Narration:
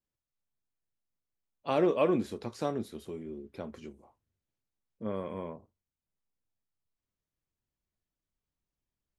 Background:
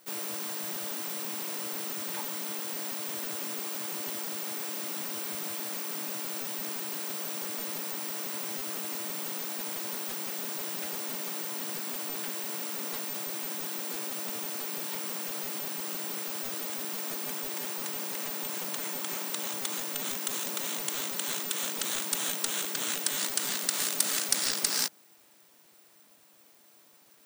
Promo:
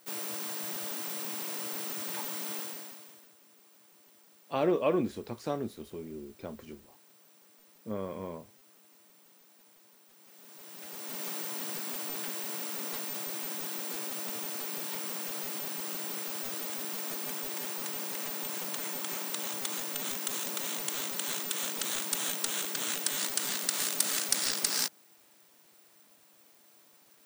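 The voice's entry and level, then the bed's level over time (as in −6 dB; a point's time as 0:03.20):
2.85 s, −1.0 dB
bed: 0:02.60 −1.5 dB
0:03.35 −25 dB
0:10.10 −25 dB
0:11.24 −1.5 dB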